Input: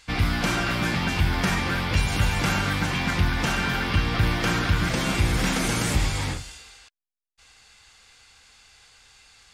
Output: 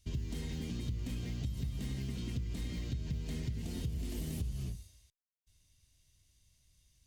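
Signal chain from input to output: passive tone stack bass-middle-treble 10-0-1; compressor 6:1, threshold -36 dBFS, peak gain reduction 11 dB; speed mistake 33 rpm record played at 45 rpm; gain +2.5 dB

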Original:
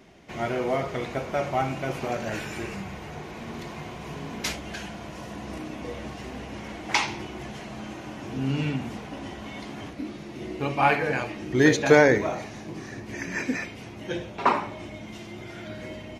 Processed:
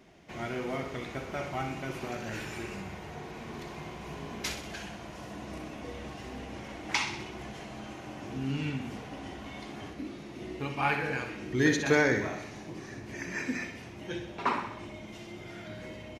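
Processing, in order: dynamic EQ 620 Hz, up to -7 dB, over -38 dBFS, Q 1.2; on a send: feedback echo 63 ms, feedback 57%, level -9 dB; on the sum: gain -5 dB

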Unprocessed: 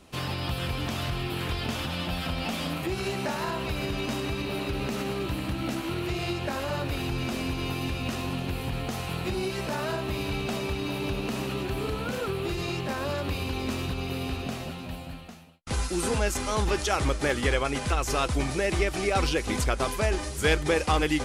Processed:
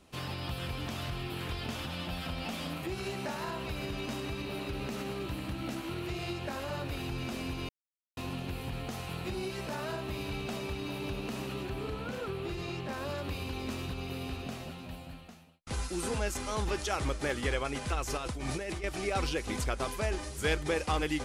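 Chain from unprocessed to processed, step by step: 7.69–8.17 mute; 11.69–12.93 high shelf 6000 Hz -7 dB; 18.17–18.84 negative-ratio compressor -30 dBFS, ratio -1; gain -6.5 dB

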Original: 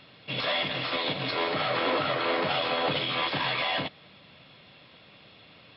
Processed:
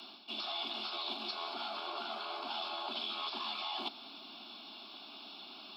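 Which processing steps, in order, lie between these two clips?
rattling part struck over -46 dBFS, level -38 dBFS; frequency shift +87 Hz; reverse; compressor 6:1, threshold -41 dBFS, peak gain reduction 16.5 dB; reverse; HPF 84 Hz; tilt +2.5 dB/oct; fixed phaser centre 510 Hz, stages 6; gain +5 dB

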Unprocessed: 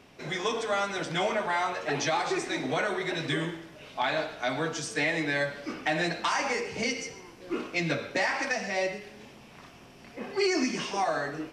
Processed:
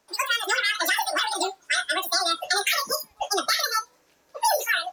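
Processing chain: spectral noise reduction 18 dB; speed mistake 33 rpm record played at 78 rpm; gain +5.5 dB

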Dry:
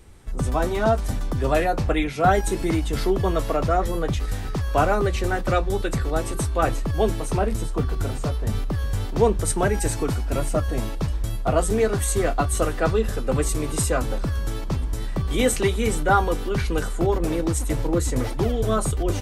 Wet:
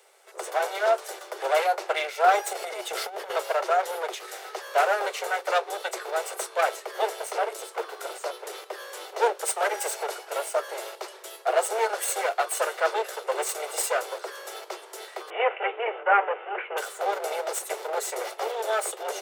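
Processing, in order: minimum comb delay 1.4 ms; steep high-pass 370 Hz 96 dB/oct; 2.53–3.36 negative-ratio compressor -32 dBFS, ratio -0.5; 15.3–16.77 steep low-pass 2900 Hz 72 dB/oct

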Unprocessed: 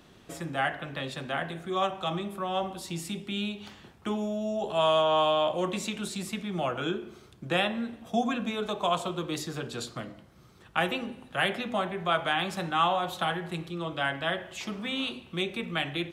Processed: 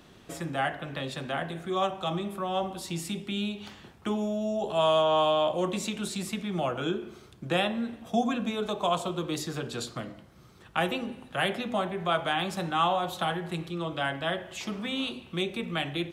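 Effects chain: dynamic EQ 1900 Hz, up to -4 dB, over -40 dBFS, Q 0.76; gain +1.5 dB

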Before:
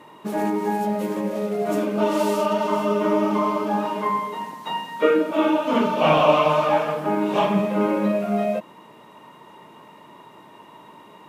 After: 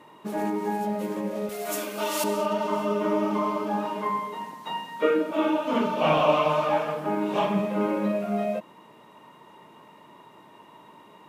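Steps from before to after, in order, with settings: 1.49–2.24 tilt +4.5 dB/oct; gain -4.5 dB

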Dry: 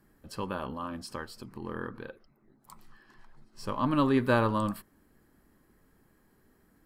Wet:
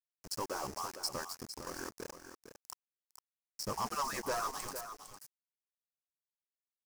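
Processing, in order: median-filter separation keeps percussive; soft clip -33 dBFS, distortion -7 dB; dynamic EQ 740 Hz, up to +5 dB, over -55 dBFS, Q 1.3; sample gate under -43.5 dBFS; reverse; upward compressor, threshold -49 dBFS; reverse; resonant high shelf 4400 Hz +7 dB, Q 3; on a send: echo 0.456 s -10 dB

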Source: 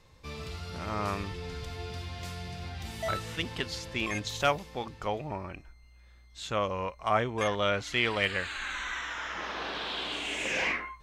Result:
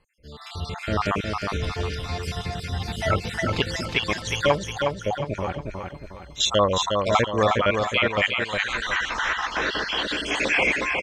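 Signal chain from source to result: random spectral dropouts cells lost 57%; treble ducked by the level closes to 2900 Hz, closed at -27.5 dBFS; 6.4–7.51 band shelf 4700 Hz +9.5 dB; AGC gain up to 16.5 dB; 4.71–5.27 air absorption 490 m; feedback echo 0.361 s, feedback 41%, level -4.5 dB; gain -4.5 dB

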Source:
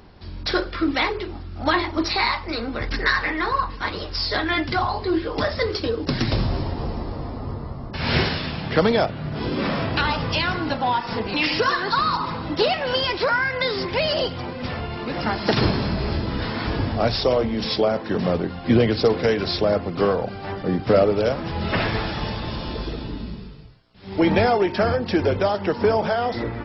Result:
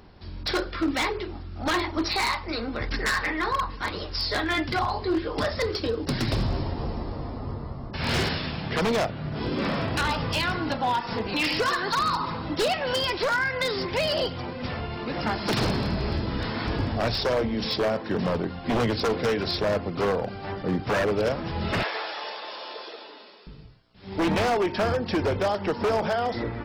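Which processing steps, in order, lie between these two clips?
21.83–23.47 HPF 480 Hz 24 dB/oct; wavefolder -15 dBFS; gain -3 dB

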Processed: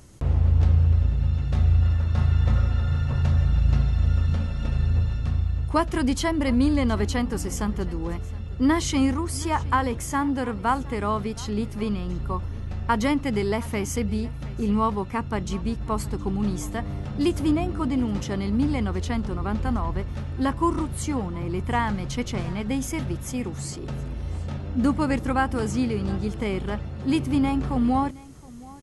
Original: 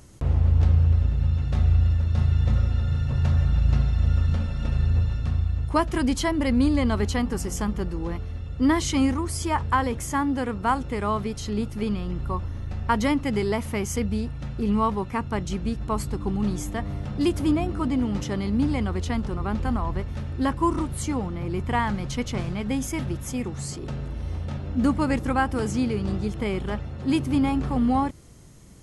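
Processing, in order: 1.82–3.22 bell 1200 Hz +5 dB 1.8 oct; on a send: echo 0.718 s -21.5 dB

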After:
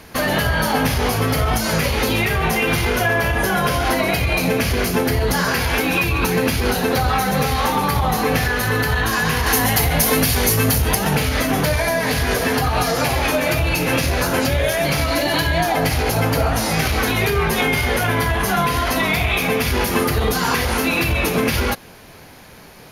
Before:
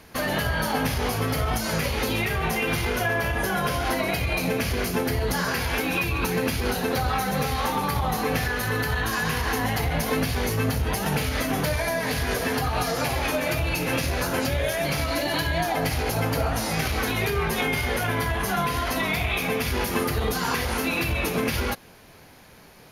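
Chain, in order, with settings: 9.46–10.95 high shelf 5500 Hz +12 dB; in parallel at -12 dB: soft clip -26.5 dBFS, distortion -10 dB; on the sum: gain +5.5 dB

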